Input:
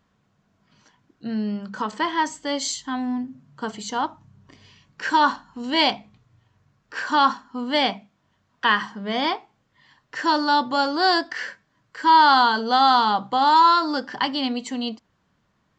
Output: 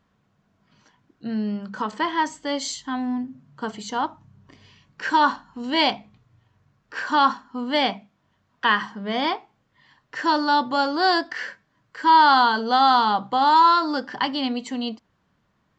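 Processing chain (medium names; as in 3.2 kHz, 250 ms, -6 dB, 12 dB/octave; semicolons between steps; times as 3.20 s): treble shelf 6.1 kHz -6.5 dB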